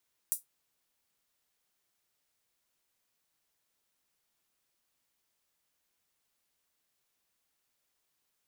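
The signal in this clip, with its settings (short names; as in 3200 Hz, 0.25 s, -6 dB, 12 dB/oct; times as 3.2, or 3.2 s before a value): closed hi-hat, high-pass 9000 Hz, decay 0.15 s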